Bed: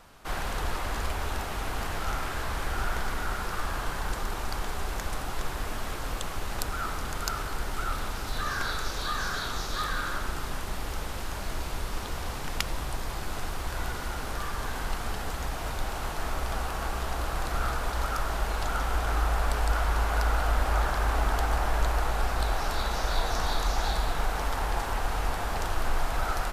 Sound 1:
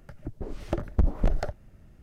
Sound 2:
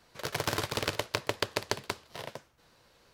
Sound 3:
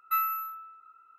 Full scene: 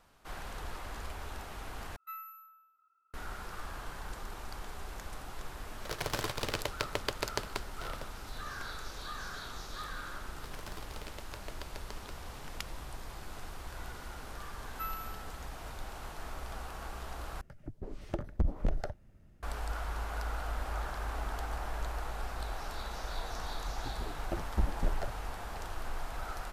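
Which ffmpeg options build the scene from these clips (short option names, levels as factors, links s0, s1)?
-filter_complex "[3:a]asplit=2[s0][s1];[2:a]asplit=2[s2][s3];[1:a]asplit=2[s4][s5];[0:a]volume=0.282[s6];[s0]aecho=1:1:77|154|231|308|385:0.126|0.0743|0.0438|0.0259|0.0153[s7];[s5]asplit=2[s8][s9];[s9]adelay=9.3,afreqshift=-2.4[s10];[s8][s10]amix=inputs=2:normalize=1[s11];[s6]asplit=3[s12][s13][s14];[s12]atrim=end=1.964[s15];[s7]atrim=end=1.18,asetpts=PTS-STARTPTS,volume=0.141[s16];[s13]atrim=start=3.136:end=17.414[s17];[s4]atrim=end=2.02,asetpts=PTS-STARTPTS,volume=0.447[s18];[s14]atrim=start=19.426[s19];[s2]atrim=end=3.13,asetpts=PTS-STARTPTS,volume=0.631,afade=t=in:d=0.004:c=hsin,afade=t=out:st=3.126:d=0.004:c=hsin,adelay=5660[s20];[s3]atrim=end=3.13,asetpts=PTS-STARTPTS,volume=0.133,afade=t=in:d=0.004:c=hsin,afade=t=out:st=3.126:d=0.004:c=hsin,adelay=10190[s21];[s1]atrim=end=1.18,asetpts=PTS-STARTPTS,volume=0.237,afade=t=in:d=0.004:c=hsin,afade=t=out:st=1.176:d=0.004:c=hsin,adelay=14680[s22];[s11]atrim=end=2.02,asetpts=PTS-STARTPTS,volume=0.531,afade=t=in:d=0.004:c=hsin,afade=t=out:st=2.016:d=0.004:c=hsin,adelay=23590[s23];[s15][s16]acrossfade=d=0.004:c1=hsin:c2=hsin[s24];[s24][s17]acrossfade=d=0.004:c1=hsin:c2=hsin[s25];[s25][s18]acrossfade=d=0.004:c1=hsin:c2=hsin[s26];[s26][s19]acrossfade=d=0.004:c1=hsin:c2=hsin[s27];[s27][s20][s21][s22][s23]amix=inputs=5:normalize=0"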